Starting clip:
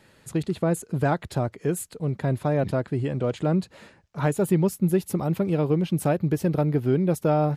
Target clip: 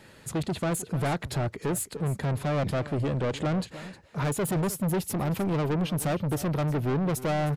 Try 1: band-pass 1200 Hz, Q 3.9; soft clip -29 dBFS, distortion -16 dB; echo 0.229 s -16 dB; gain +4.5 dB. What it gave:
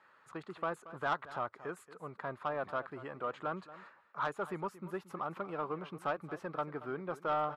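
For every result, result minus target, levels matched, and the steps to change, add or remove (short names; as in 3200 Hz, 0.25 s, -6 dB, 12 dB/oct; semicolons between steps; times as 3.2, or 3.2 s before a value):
1000 Hz band +8.0 dB; echo 81 ms early
remove: band-pass 1200 Hz, Q 3.9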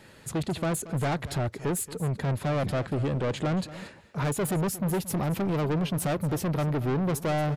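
echo 81 ms early
change: echo 0.31 s -16 dB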